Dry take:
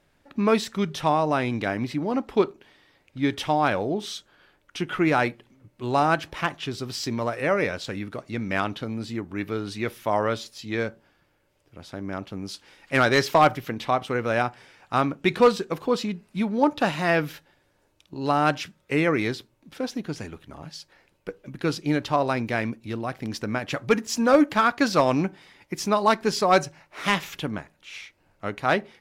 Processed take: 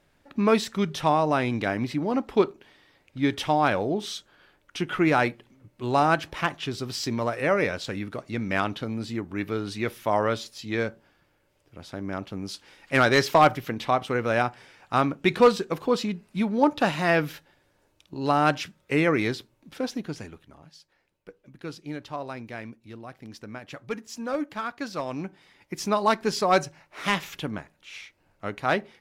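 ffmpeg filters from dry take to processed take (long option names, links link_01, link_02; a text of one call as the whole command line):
ffmpeg -i in.wav -af "volume=9.5dB,afade=type=out:start_time=19.87:duration=0.76:silence=0.266073,afade=type=in:start_time=25.09:duration=0.78:silence=0.334965" out.wav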